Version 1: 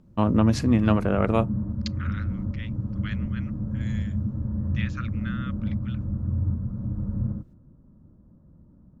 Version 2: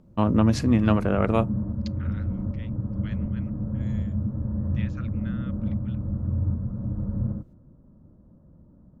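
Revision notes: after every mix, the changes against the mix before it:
second voice -8.5 dB; background: add peaking EQ 590 Hz +5 dB 1.2 oct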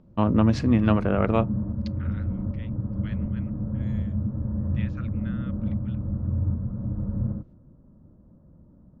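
master: add low-pass 4.5 kHz 12 dB/octave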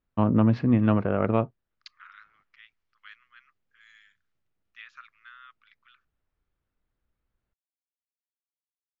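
first voice: add distance through air 320 m; background: muted

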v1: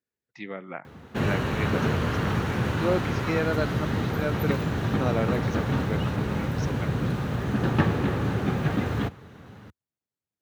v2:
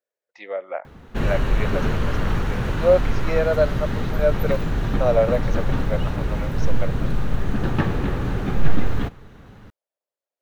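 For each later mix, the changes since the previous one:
speech: add resonant high-pass 570 Hz, resonance Q 4.9; master: remove high-pass 79 Hz 24 dB/octave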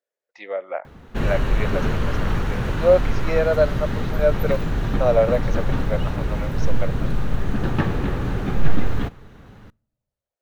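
speech: send on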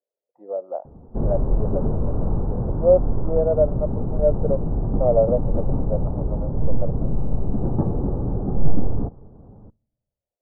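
master: add inverse Chebyshev low-pass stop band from 2.1 kHz, stop band 50 dB

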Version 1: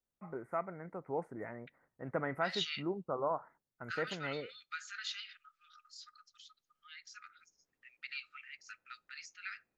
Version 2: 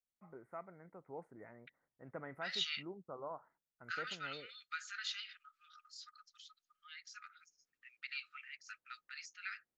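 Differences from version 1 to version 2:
first voice -11.0 dB; reverb: off

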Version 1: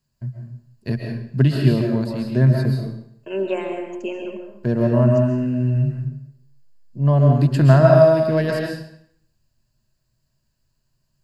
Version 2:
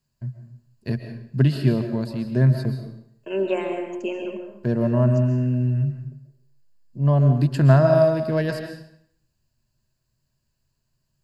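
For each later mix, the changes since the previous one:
first voice: send -8.0 dB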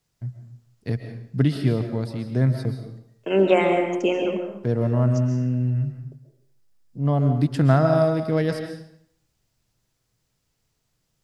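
second voice +9.0 dB; master: remove rippled EQ curve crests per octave 1.4, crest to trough 9 dB

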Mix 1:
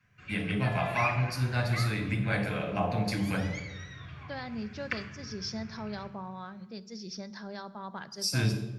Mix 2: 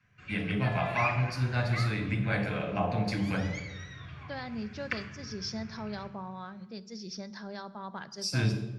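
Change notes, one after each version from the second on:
first voice: add distance through air 59 m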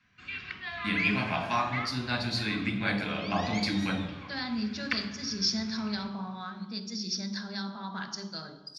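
first voice: entry +0.55 s; second voice: send +9.5 dB; master: add ten-band graphic EQ 125 Hz -10 dB, 250 Hz +8 dB, 500 Hz -6 dB, 1 kHz +3 dB, 4 kHz +10 dB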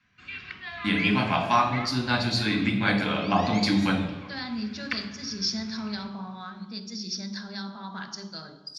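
first voice: send +6.0 dB

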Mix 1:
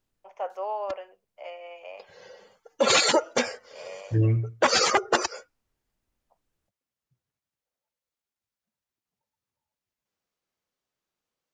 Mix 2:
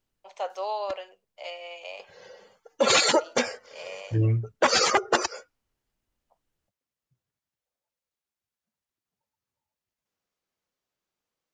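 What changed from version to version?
first voice: remove boxcar filter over 11 samples; reverb: off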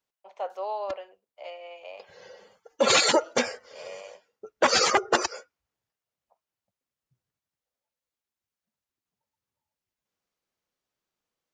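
first voice: add low-pass 1.3 kHz 6 dB/octave; second voice: muted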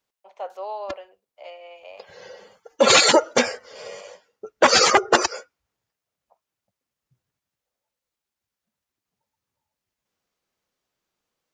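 background +6.0 dB

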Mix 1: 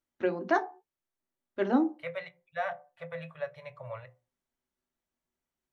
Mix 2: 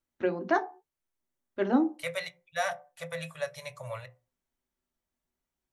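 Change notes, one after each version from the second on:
second voice: remove distance through air 490 m; master: add bass shelf 110 Hz +6.5 dB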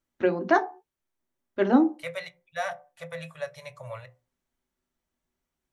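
first voice +5.0 dB; second voice: add treble shelf 4.3 kHz -7.5 dB

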